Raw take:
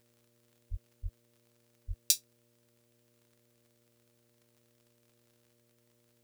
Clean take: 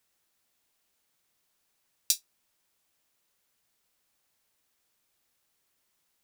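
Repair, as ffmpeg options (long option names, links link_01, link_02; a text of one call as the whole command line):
ffmpeg -i in.wav -filter_complex "[0:a]adeclick=threshold=4,bandreject=frequency=118.3:width_type=h:width=4,bandreject=frequency=236.6:width_type=h:width=4,bandreject=frequency=354.9:width_type=h:width=4,bandreject=frequency=473.2:width_type=h:width=4,bandreject=frequency=591.5:width_type=h:width=4,asplit=3[link_01][link_02][link_03];[link_01]afade=type=out:start_time=0.7:duration=0.02[link_04];[link_02]highpass=frequency=140:width=0.5412,highpass=frequency=140:width=1.3066,afade=type=in:start_time=0.7:duration=0.02,afade=type=out:start_time=0.82:duration=0.02[link_05];[link_03]afade=type=in:start_time=0.82:duration=0.02[link_06];[link_04][link_05][link_06]amix=inputs=3:normalize=0,asplit=3[link_07][link_08][link_09];[link_07]afade=type=out:start_time=1.02:duration=0.02[link_10];[link_08]highpass=frequency=140:width=0.5412,highpass=frequency=140:width=1.3066,afade=type=in:start_time=1.02:duration=0.02,afade=type=out:start_time=1.14:duration=0.02[link_11];[link_09]afade=type=in:start_time=1.14:duration=0.02[link_12];[link_10][link_11][link_12]amix=inputs=3:normalize=0,asplit=3[link_13][link_14][link_15];[link_13]afade=type=out:start_time=1.87:duration=0.02[link_16];[link_14]highpass=frequency=140:width=0.5412,highpass=frequency=140:width=1.3066,afade=type=in:start_time=1.87:duration=0.02,afade=type=out:start_time=1.99:duration=0.02[link_17];[link_15]afade=type=in:start_time=1.99:duration=0.02[link_18];[link_16][link_17][link_18]amix=inputs=3:normalize=0" out.wav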